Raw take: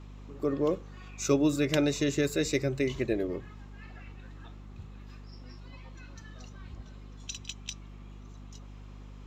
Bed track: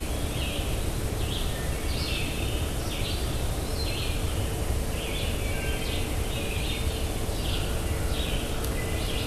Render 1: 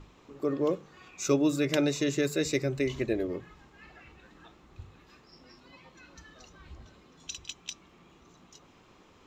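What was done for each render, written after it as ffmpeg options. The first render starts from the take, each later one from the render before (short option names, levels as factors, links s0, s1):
-af "bandreject=f=50:t=h:w=6,bandreject=f=100:t=h:w=6,bandreject=f=150:t=h:w=6,bandreject=f=200:t=h:w=6,bandreject=f=250:t=h:w=6"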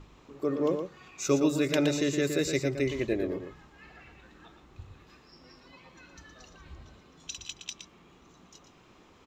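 -filter_complex "[0:a]asplit=2[s0][s1];[s1]adelay=116.6,volume=0.447,highshelf=f=4000:g=-2.62[s2];[s0][s2]amix=inputs=2:normalize=0"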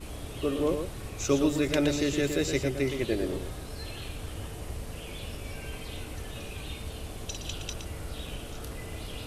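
-filter_complex "[1:a]volume=0.316[s0];[0:a][s0]amix=inputs=2:normalize=0"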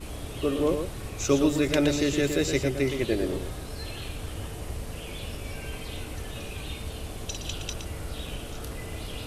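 -af "volume=1.33"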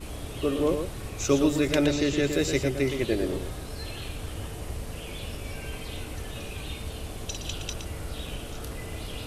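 -filter_complex "[0:a]asettb=1/sr,asplit=3[s0][s1][s2];[s0]atrim=end=1.864[s3];[s1]atrim=start=1.86:end=2.33,asetpts=PTS-STARTPTS,afade=t=in:d=0.004:c=qsin,afade=t=out:st=0.466:d=0.004:c=qsin,acrossover=split=7300[s4][s5];[s5]acompressor=threshold=0.002:ratio=4:attack=1:release=60[s6];[s4][s6]amix=inputs=2:normalize=0[s7];[s2]atrim=start=2.326[s8];[s3][s7]acrossfade=d=0.004:c1=hsin:c2=qsin[s9];[s9][s8]acrossfade=d=0.004:c1=qsin:c2=hsin"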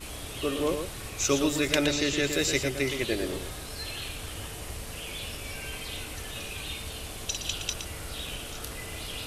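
-af "tiltshelf=f=970:g=-5"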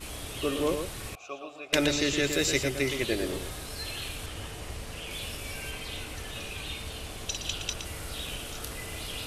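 -filter_complex "[0:a]asettb=1/sr,asplit=3[s0][s1][s2];[s0]atrim=end=1.154[s3];[s1]atrim=start=1.15:end=1.73,asetpts=PTS-STARTPTS,afade=t=in:d=0.004:c=qsin,afade=t=out:st=0.576:d=0.004:c=qsin,asplit=3[s4][s5][s6];[s4]bandpass=f=730:t=q:w=8,volume=1[s7];[s5]bandpass=f=1090:t=q:w=8,volume=0.501[s8];[s6]bandpass=f=2440:t=q:w=8,volume=0.355[s9];[s7][s8][s9]amix=inputs=3:normalize=0[s10];[s2]atrim=start=1.726[s11];[s3][s10]acrossfade=d=0.004:c1=hsin:c2=qsin[s12];[s12][s11]acrossfade=d=0.004:c1=qsin:c2=hsin,asettb=1/sr,asplit=3[s13][s14][s15];[s13]atrim=end=4.264[s16];[s14]atrim=start=4.26:end=5.11,asetpts=PTS-STARTPTS,afade=t=in:d=0.004:c=qsin,afade=t=out:st=0.846:d=0.004:c=qsin,highshelf=f=9200:g=-10[s17];[s15]atrim=start=5.106[s18];[s16][s17]acrossfade=d=0.004:c1=hsin:c2=qsin[s19];[s19][s18]acrossfade=d=0.004:c1=qsin:c2=hsin,asettb=1/sr,asplit=3[s20][s21][s22];[s20]atrim=end=5.714[s23];[s21]atrim=start=5.71:end=7.85,asetpts=PTS-STARTPTS,afade=t=in:d=0.004:c=qsin,afade=t=out:st=2.136:d=0.004:c=qsin,highshelf=f=7600:g=-6[s24];[s22]atrim=start=7.846[s25];[s23][s24]acrossfade=d=0.004:c1=hsin:c2=qsin[s26];[s26][s25]acrossfade=d=0.004:c1=qsin:c2=hsin"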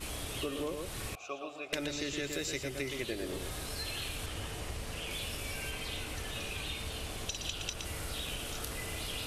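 -af "acompressor=threshold=0.02:ratio=5"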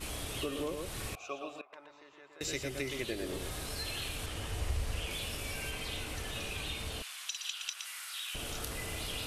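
-filter_complex "[0:a]asettb=1/sr,asplit=3[s0][s1][s2];[s0]atrim=end=1.614[s3];[s1]atrim=start=1.61:end=2.41,asetpts=PTS-STARTPTS,afade=t=in:d=0.004:c=qsin,afade=t=out:st=0.796:d=0.004:c=qsin,bandpass=f=990:t=q:w=5.1[s4];[s2]atrim=start=2.406[s5];[s3][s4]acrossfade=d=0.004:c1=hsin:c2=qsin[s6];[s6][s5]acrossfade=d=0.004:c1=qsin:c2=hsin,asettb=1/sr,asplit=3[s7][s8][s9];[s7]atrim=end=4.494[s10];[s8]atrim=start=4.49:end=5.06,asetpts=PTS-STARTPTS,afade=t=in:d=0.004:c=qsin,afade=t=out:st=0.566:d=0.004:c=qsin,lowshelf=f=110:t=q:w=1.5:g=7[s11];[s9]atrim=start=5.056[s12];[s10][s11]acrossfade=d=0.004:c1=hsin:c2=qsin[s13];[s13][s12]acrossfade=d=0.004:c1=qsin:c2=hsin,asettb=1/sr,asplit=3[s14][s15][s16];[s14]atrim=end=7.024[s17];[s15]atrim=start=7.02:end=8.35,asetpts=PTS-STARTPTS,afade=t=in:d=0.004:c=qsin,afade=t=out:st=1.326:d=0.004:c=qsin,highpass=f=1200:w=0.5412,highpass=f=1200:w=1.3066[s18];[s16]atrim=start=8.346[s19];[s17][s18]acrossfade=d=0.004:c1=hsin:c2=qsin[s20];[s20][s19]acrossfade=d=0.004:c1=qsin:c2=hsin"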